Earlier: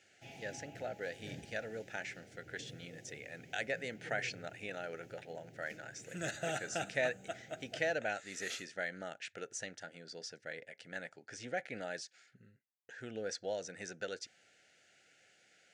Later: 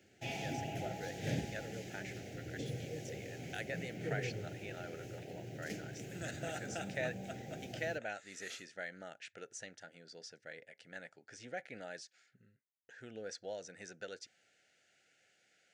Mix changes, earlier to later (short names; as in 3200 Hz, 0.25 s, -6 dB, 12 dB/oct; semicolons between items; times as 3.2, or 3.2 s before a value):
speech -5.0 dB; background +11.5 dB